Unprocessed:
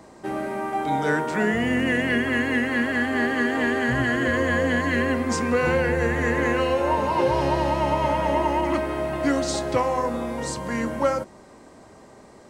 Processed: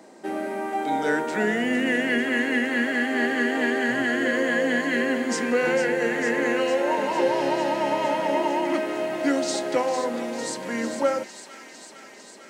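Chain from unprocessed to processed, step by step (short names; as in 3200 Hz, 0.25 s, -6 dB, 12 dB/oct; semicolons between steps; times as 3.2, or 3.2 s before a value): HPF 210 Hz 24 dB/oct; bell 1100 Hz -9 dB 0.29 oct; thin delay 0.452 s, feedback 76%, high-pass 2100 Hz, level -8.5 dB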